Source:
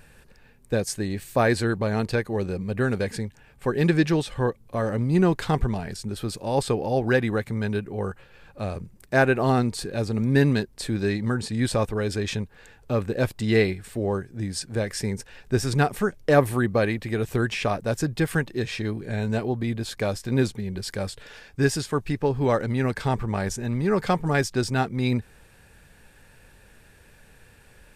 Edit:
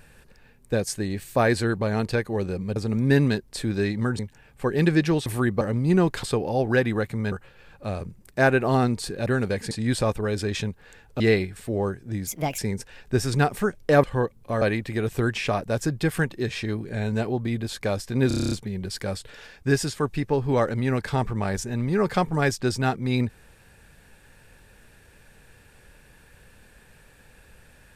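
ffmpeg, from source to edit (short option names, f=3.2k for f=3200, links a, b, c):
-filter_complex "[0:a]asplit=22[a][b][c][d][e][f][g][h][i][j][k][l][m][n][o][p][q][r][s][t][u][v];[a]atrim=end=2.762[w];[b]atrim=start=10.008:end=11.442[x];[c]atrim=start=3.208:end=4.282[y];[d]atrim=start=16.428:end=16.782[z];[e]atrim=start=4.858:end=5.482[aa];[f]atrim=start=6.598:end=7.692[ab];[g]atrim=start=8.068:end=10.012[ac];[h]atrim=start=2.758:end=3.212[ad];[i]atrim=start=11.438:end=12.932[ae];[j]atrim=start=13.478:end=14.554[af];[k]atrim=start=14.55:end=14.98,asetpts=PTS-STARTPTS,asetrate=59976,aresample=44100,atrim=end_sample=13943,asetpts=PTS-STARTPTS[ag];[l]atrim=start=14.976:end=16.432[ah];[m]atrim=start=4.278:end=4.862[ai];[n]atrim=start=16.778:end=20.472[aj];[o]atrim=start=20.438:end=20.472[ak];[p]atrim=start=20.438:end=20.472[al];[q]atrim=start=20.438:end=20.472[am];[r]atrim=start=20.438:end=20.472[an];[s]atrim=start=20.438:end=20.472[ao];[t]atrim=start=20.438:end=20.472[ap];[u]atrim=start=20.438:end=20.472[aq];[v]atrim=start=20.438[ar];[w][x]acrossfade=d=0.004:c1=hsin:c2=hsin[as];[as][y]acrossfade=d=0.004:c1=hsin:c2=hsin[at];[at][z]acrossfade=d=0.004:c1=hsin:c2=hsin[au];[au][aa]acrossfade=d=0.004:c1=hsin:c2=hsin[av];[av][ab]acrossfade=d=0.004:c1=hsin:c2=hsin[aw];[aw][ac]acrossfade=d=0.004:c1=hsin:c2=hsin[ax];[ax][ad]acrossfade=d=0.004:c1=hsin:c2=hsin[ay];[ay][ae]acrossfade=d=0.004:c1=hsin:c2=hsin[az];[az][af]acrossfade=d=0.004:c1=hsin:c2=hsin[ba];[ba][ag]acrossfade=d=0.004:c1=hsin:c2=hsin[bb];[bb][ah]acrossfade=d=0.004:c1=hsin:c2=hsin[bc];[bc][ai]acrossfade=d=0.004:c1=hsin:c2=hsin[bd];[bd][aj]acrossfade=d=0.004:c1=hsin:c2=hsin[be];[be][ak]acrossfade=d=0.004:c1=hsin:c2=hsin[bf];[bf][al]acrossfade=d=0.004:c1=hsin:c2=hsin[bg];[bg][am]acrossfade=d=0.004:c1=hsin:c2=hsin[bh];[bh][an]acrossfade=d=0.004:c1=hsin:c2=hsin[bi];[bi][ao]acrossfade=d=0.004:c1=hsin:c2=hsin[bj];[bj][ap]acrossfade=d=0.004:c1=hsin:c2=hsin[bk];[bk][aq]acrossfade=d=0.004:c1=hsin:c2=hsin[bl];[bl][ar]acrossfade=d=0.004:c1=hsin:c2=hsin"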